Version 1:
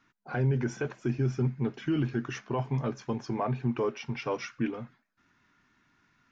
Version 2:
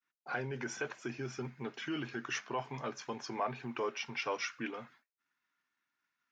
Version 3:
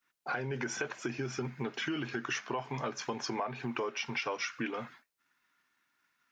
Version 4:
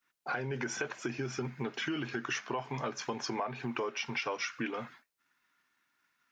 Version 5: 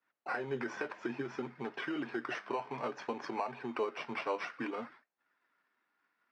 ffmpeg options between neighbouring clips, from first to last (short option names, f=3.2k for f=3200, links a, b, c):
-filter_complex "[0:a]asplit=2[a][b];[b]alimiter=level_in=3dB:limit=-24dB:level=0:latency=1:release=206,volume=-3dB,volume=-1dB[c];[a][c]amix=inputs=2:normalize=0,agate=range=-33dB:threshold=-50dB:ratio=3:detection=peak,highpass=f=1.1k:p=1,volume=-1.5dB"
-af "acompressor=threshold=-41dB:ratio=6,volume=9dB"
-af anull
-filter_complex "[0:a]flanger=delay=1.1:depth=9:regen=59:speed=0.58:shape=sinusoidal,asplit=2[a][b];[b]acrusher=samples=13:mix=1:aa=0.000001,volume=-3.5dB[c];[a][c]amix=inputs=2:normalize=0,highpass=240,lowpass=2.9k"